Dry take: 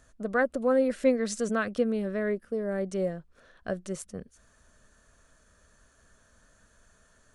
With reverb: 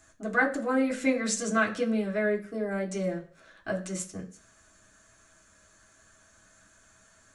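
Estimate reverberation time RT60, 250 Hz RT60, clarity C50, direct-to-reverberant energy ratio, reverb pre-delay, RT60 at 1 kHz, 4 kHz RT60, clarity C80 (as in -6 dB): 0.45 s, 0.45 s, 13.0 dB, -2.5 dB, 3 ms, 0.50 s, 0.45 s, 17.0 dB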